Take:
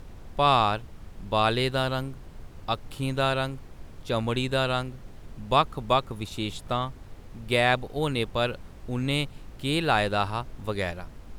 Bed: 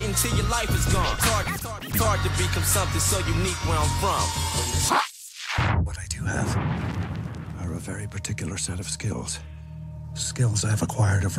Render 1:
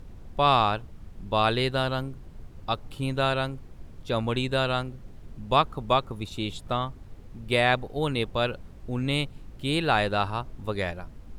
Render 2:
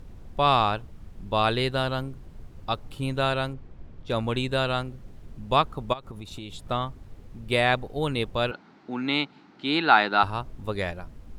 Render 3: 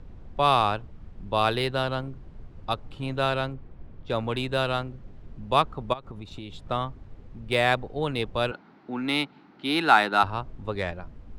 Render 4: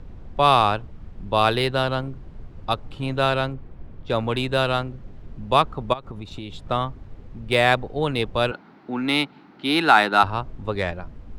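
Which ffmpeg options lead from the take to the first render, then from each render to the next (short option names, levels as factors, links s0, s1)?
-af "afftdn=nr=6:nf=-46"
-filter_complex "[0:a]asettb=1/sr,asplit=3[s0][s1][s2];[s0]atrim=end=3.534[s3];[s1]atrim=start=3.53:end=4.13,asetpts=PTS-STARTPTS,afade=t=in:d=0.004:c=qsin,afade=t=out:st=0.596:d=0.004:c=qsin,adynamicsmooth=sensitivity=5:basefreq=4300[s4];[s2]atrim=start=4.126[s5];[s3][s4]acrossfade=d=0.004:c1=hsin:c2=qsin[s6];[s6][s5]acrossfade=d=0.004:c1=qsin:c2=hsin,asplit=3[s7][s8][s9];[s7]afade=t=out:st=5.92:d=0.02[s10];[s8]acompressor=threshold=0.0224:ratio=12:attack=3.2:release=140:knee=1:detection=peak,afade=t=in:st=5.92:d=0.02,afade=t=out:st=6.66:d=0.02[s11];[s9]afade=t=in:st=6.66:d=0.02[s12];[s10][s11][s12]amix=inputs=3:normalize=0,asettb=1/sr,asplit=3[s13][s14][s15];[s13]atrim=end=8.514[s16];[s14]atrim=start=8.51:end=10.23,asetpts=PTS-STARTPTS,afade=t=in:d=0.004:c=qsin,afade=t=out:st=1.716:d=0.004:c=qsin,highpass=f=190:w=0.5412,highpass=f=190:w=1.3066,equalizer=f=300:t=q:w=4:g=4,equalizer=f=530:t=q:w=4:g=-8,equalizer=f=850:t=q:w=4:g=9,equalizer=f=1400:t=q:w=4:g=9,equalizer=f=2100:t=q:w=4:g=5,equalizer=f=4200:t=q:w=4:g=5,lowpass=f=5600:w=0.5412,lowpass=f=5600:w=1.3066[s17];[s15]atrim=start=10.226[s18];[s16][s17]acrossfade=d=0.004:c1=hsin:c2=qsin[s19];[s19][s18]acrossfade=d=0.004:c1=qsin:c2=hsin"
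-filter_complex "[0:a]acrossover=split=270|1500[s0][s1][s2];[s0]asoftclip=type=hard:threshold=0.0266[s3];[s2]adynamicsmooth=sensitivity=3.5:basefreq=4400[s4];[s3][s1][s4]amix=inputs=3:normalize=0"
-af "volume=1.68,alimiter=limit=0.708:level=0:latency=1"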